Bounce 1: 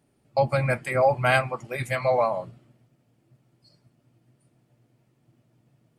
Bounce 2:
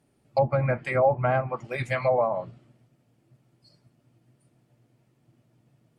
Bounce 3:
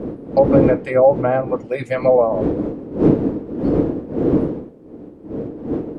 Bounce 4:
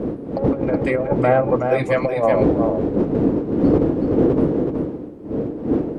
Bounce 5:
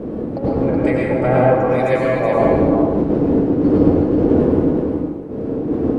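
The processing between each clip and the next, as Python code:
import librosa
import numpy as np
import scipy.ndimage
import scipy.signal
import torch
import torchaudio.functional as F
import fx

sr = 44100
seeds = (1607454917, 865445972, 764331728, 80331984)

y1 = fx.env_lowpass_down(x, sr, base_hz=930.0, full_db=-18.0)
y2 = fx.dmg_wind(y1, sr, seeds[0], corner_hz=260.0, level_db=-28.0)
y2 = fx.low_shelf(y2, sr, hz=61.0, db=-8.5)
y2 = fx.small_body(y2, sr, hz=(310.0, 450.0), ring_ms=25, db=14)
y3 = fx.diode_clip(y2, sr, knee_db=-2.0)
y3 = fx.over_compress(y3, sr, threshold_db=-17.0, ratio=-0.5)
y3 = y3 + 10.0 ** (-5.5 / 20.0) * np.pad(y3, (int(373 * sr / 1000.0), 0))[:len(y3)]
y3 = y3 * librosa.db_to_amplitude(1.0)
y4 = fx.rev_plate(y3, sr, seeds[1], rt60_s=1.1, hf_ratio=0.8, predelay_ms=85, drr_db=-4.0)
y4 = y4 * librosa.db_to_amplitude(-3.0)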